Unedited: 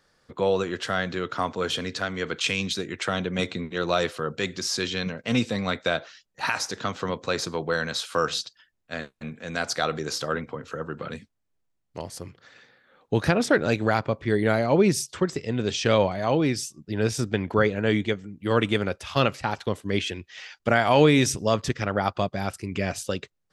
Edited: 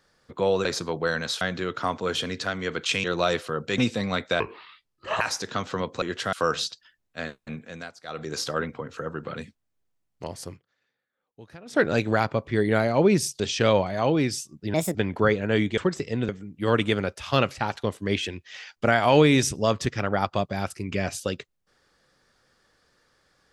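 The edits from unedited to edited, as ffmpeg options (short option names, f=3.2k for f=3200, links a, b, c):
-filter_complex "[0:a]asplit=18[a][b][c][d][e][f][g][h][i][j][k][l][m][n][o][p][q][r];[a]atrim=end=0.652[s];[b]atrim=start=7.308:end=8.072[t];[c]atrim=start=0.958:end=2.592[u];[d]atrim=start=3.738:end=4.482[v];[e]atrim=start=5.328:end=5.954[w];[f]atrim=start=5.95:end=6.5,asetpts=PTS-STARTPTS,asetrate=29988,aresample=44100,atrim=end_sample=35669,asetpts=PTS-STARTPTS[x];[g]atrim=start=6.496:end=7.312[y];[h]atrim=start=0.648:end=0.962[z];[i]atrim=start=8.068:end=9.68,asetpts=PTS-STARTPTS,afade=t=out:st=1.242:d=0.37:silence=0.0794328[aa];[j]atrim=start=9.68:end=9.76,asetpts=PTS-STARTPTS,volume=-22dB[ab];[k]atrim=start=9.76:end=12.41,asetpts=PTS-STARTPTS,afade=t=in:d=0.37:silence=0.0794328,afade=t=out:st=2.49:d=0.16:c=qua:silence=0.0668344[ac];[l]atrim=start=12.41:end=13.38,asetpts=PTS-STARTPTS,volume=-23.5dB[ad];[m]atrim=start=13.38:end=15.142,asetpts=PTS-STARTPTS,afade=t=in:d=0.16:c=qua:silence=0.0668344[ae];[n]atrim=start=15.648:end=16.994[af];[o]atrim=start=16.99:end=17.29,asetpts=PTS-STARTPTS,asetrate=63504,aresample=44100[ag];[p]atrim=start=17.286:end=18.122[ah];[q]atrim=start=15.138:end=15.652[ai];[r]atrim=start=18.118[aj];[s][t]acrossfade=d=0.004:c1=hsin:c2=hsin[ak];[ak][u]acrossfade=d=0.004:c1=hsin:c2=hsin[al];[al][v]acrossfade=d=0.004:c1=hsin:c2=hsin[am];[am][w]acrossfade=d=0.004:c1=hsin:c2=hsin[an];[an][x]acrossfade=d=0.004:c1=hsin:c2=hsin[ao];[ao][y]acrossfade=d=0.004:c1=hsin:c2=hsin[ap];[ap][z]acrossfade=d=0.004:c1=hsin:c2=hsin[aq];[aa][ab][ac][ad][ae]concat=n=5:v=0:a=1[ar];[aq][ar]acrossfade=d=0.004:c1=hsin:c2=hsin[as];[as][af]acrossfade=d=0.004:c1=hsin:c2=hsin[at];[at][ag]acrossfade=d=0.004:c1=hsin:c2=hsin[au];[au][ah]acrossfade=d=0.004:c1=hsin:c2=hsin[av];[av][ai]acrossfade=d=0.004:c1=hsin:c2=hsin[aw];[aw][aj]acrossfade=d=0.004:c1=hsin:c2=hsin"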